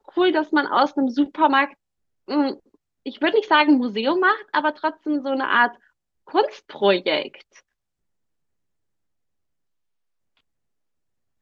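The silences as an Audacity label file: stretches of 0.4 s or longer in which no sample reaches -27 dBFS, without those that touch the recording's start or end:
1.660000	2.290000	silence
2.530000	3.060000	silence
5.690000	6.340000	silence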